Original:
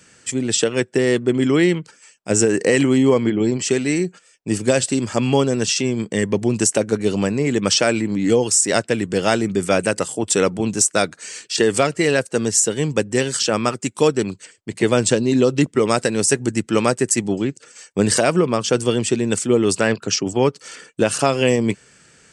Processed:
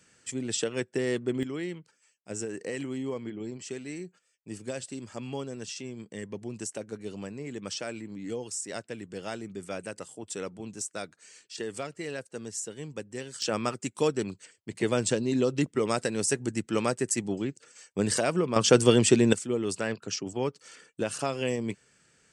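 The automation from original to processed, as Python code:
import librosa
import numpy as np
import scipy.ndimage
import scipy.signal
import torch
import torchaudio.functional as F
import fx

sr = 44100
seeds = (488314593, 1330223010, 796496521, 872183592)

y = fx.gain(x, sr, db=fx.steps((0.0, -11.5), (1.43, -19.0), (13.42, -10.0), (18.56, -1.0), (19.33, -13.0)))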